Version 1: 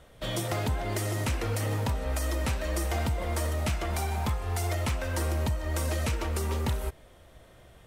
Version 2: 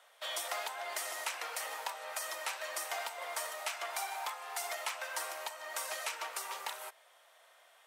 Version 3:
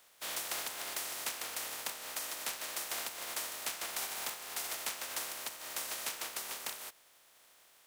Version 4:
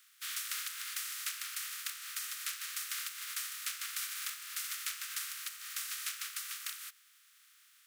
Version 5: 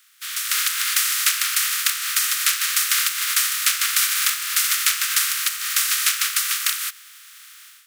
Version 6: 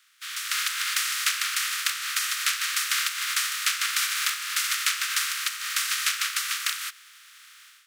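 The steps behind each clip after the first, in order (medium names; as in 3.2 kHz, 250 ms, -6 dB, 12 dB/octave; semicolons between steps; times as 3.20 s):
high-pass 720 Hz 24 dB/octave; trim -2 dB
spectral contrast reduction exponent 0.27
steep high-pass 1.2 kHz 72 dB/octave
level rider gain up to 12 dB; trim +7.5 dB
treble shelf 8.9 kHz -12 dB; trim -2.5 dB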